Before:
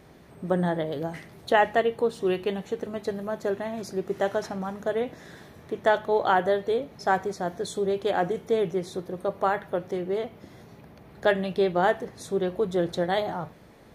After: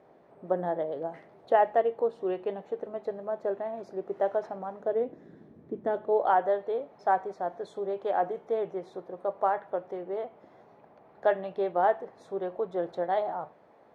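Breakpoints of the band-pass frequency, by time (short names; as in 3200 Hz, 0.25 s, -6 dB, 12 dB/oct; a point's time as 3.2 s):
band-pass, Q 1.4
4.76 s 640 Hz
5.32 s 260 Hz
5.83 s 260 Hz
6.31 s 750 Hz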